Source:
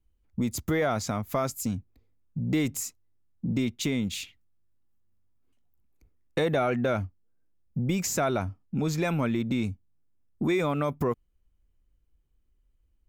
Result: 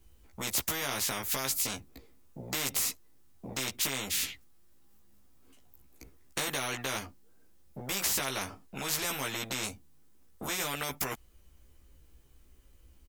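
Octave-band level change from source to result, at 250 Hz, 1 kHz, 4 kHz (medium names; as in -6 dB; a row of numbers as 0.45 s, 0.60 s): -15.0 dB, -5.5 dB, +5.5 dB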